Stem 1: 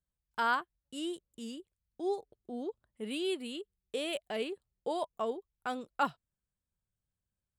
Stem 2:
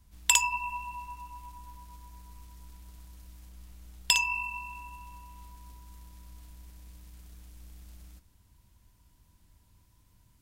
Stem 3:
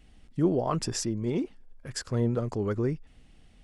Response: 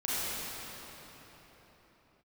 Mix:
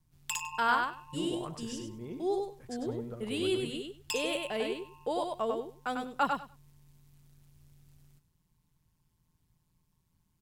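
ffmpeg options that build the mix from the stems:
-filter_complex "[0:a]agate=range=-33dB:threshold=-47dB:ratio=3:detection=peak,adelay=200,volume=1.5dB,asplit=2[a][b];[b]volume=-4dB[c];[1:a]asoftclip=type=hard:threshold=-17dB,aeval=exprs='val(0)*sin(2*PI*82*n/s)':c=same,volume=-8dB,asplit=2[d][e];[e]volume=-15.5dB[f];[2:a]adelay=750,volume=-14dB,asplit=2[g][h];[h]volume=-8.5dB[i];[c][f][i]amix=inputs=3:normalize=0,aecho=0:1:98|196|294:1|0.16|0.0256[j];[a][d][g][j]amix=inputs=4:normalize=0"

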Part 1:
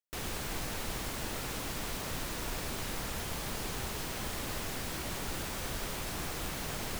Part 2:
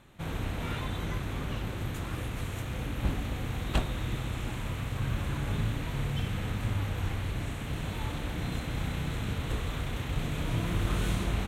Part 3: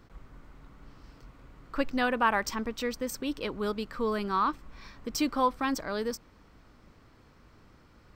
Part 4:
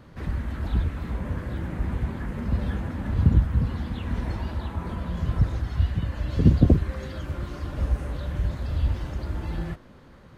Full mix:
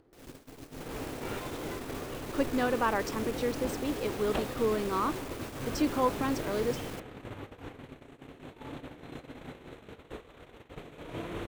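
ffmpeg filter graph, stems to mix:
-filter_complex "[0:a]asoftclip=type=tanh:threshold=-40dB,volume=-1.5dB[a];[1:a]bass=f=250:g=-11,treble=f=4k:g=-6,adelay=600,volume=-4dB[b];[2:a]adelay=600,volume=-6.5dB[c];[3:a]acompressor=threshold=-32dB:ratio=6,aeval=exprs='val(0)*sin(2*PI*200*n/s)':c=same,volume=-10.5dB[d];[a][b][c][d]amix=inputs=4:normalize=0,agate=range=-38dB:threshold=-40dB:ratio=16:detection=peak,equalizer=f=410:t=o:w=1.7:g=9,acompressor=mode=upward:threshold=-41dB:ratio=2.5"

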